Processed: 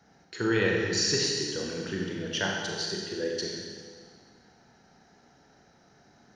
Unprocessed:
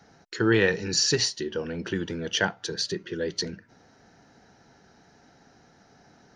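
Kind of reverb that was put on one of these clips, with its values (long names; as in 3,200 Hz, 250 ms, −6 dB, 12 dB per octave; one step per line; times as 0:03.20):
four-comb reverb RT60 1.8 s, combs from 30 ms, DRR −1.5 dB
level −6 dB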